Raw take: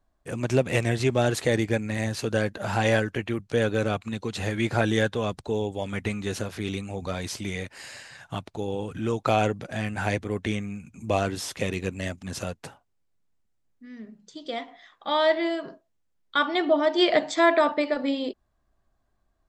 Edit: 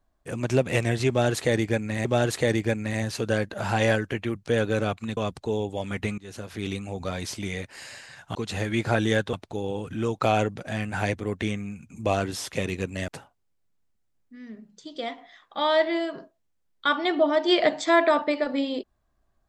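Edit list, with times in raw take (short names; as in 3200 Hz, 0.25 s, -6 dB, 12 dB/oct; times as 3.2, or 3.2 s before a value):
1.09–2.05 loop, 2 plays
4.21–5.19 move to 8.37
6.2–6.7 fade in, from -22.5 dB
12.12–12.58 cut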